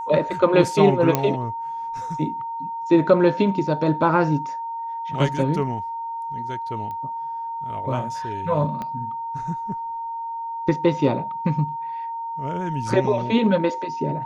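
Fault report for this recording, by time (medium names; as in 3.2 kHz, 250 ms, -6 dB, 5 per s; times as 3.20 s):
whine 920 Hz -27 dBFS
1.15 s: pop -5 dBFS
6.91 s: pop -23 dBFS
8.82 s: pop -18 dBFS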